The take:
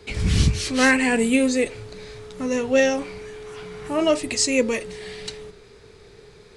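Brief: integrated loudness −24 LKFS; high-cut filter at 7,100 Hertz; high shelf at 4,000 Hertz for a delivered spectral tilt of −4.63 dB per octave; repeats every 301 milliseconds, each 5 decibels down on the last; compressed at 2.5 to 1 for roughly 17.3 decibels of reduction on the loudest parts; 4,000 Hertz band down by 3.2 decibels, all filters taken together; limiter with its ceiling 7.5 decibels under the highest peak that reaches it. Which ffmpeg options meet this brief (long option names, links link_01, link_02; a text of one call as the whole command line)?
ffmpeg -i in.wav -af "lowpass=7100,highshelf=frequency=4000:gain=4,equalizer=frequency=4000:width_type=o:gain=-6.5,acompressor=threshold=-41dB:ratio=2.5,alimiter=level_in=7dB:limit=-24dB:level=0:latency=1,volume=-7dB,aecho=1:1:301|602|903|1204|1505|1806|2107:0.562|0.315|0.176|0.0988|0.0553|0.031|0.0173,volume=15dB" out.wav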